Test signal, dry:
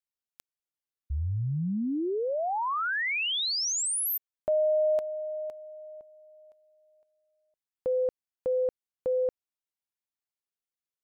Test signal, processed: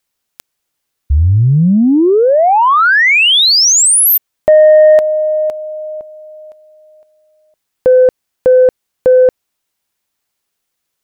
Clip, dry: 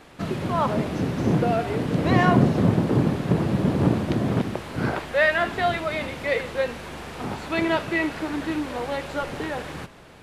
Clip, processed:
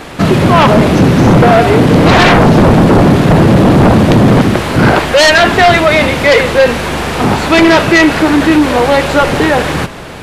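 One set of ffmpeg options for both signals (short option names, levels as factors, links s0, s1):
-af "acontrast=52,aeval=exprs='0.794*sin(PI/2*3.55*val(0)/0.794)':c=same"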